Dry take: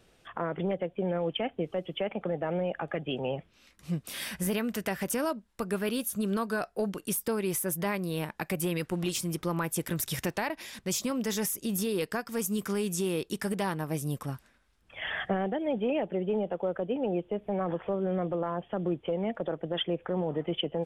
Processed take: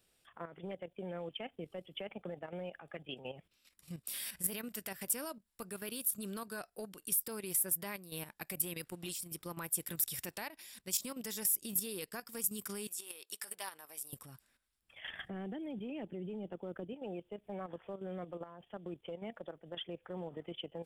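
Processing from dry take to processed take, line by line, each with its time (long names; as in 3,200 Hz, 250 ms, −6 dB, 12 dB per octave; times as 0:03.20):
0:01.59–0:02.30: low-shelf EQ 310 Hz +3.5 dB
0:12.87–0:14.13: high-pass filter 670 Hz
0:15.09–0:16.93: low shelf with overshoot 410 Hz +6.5 dB, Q 1.5
whole clip: first-order pre-emphasis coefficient 0.8; notch filter 6,300 Hz, Q 6.3; output level in coarse steps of 11 dB; level +2.5 dB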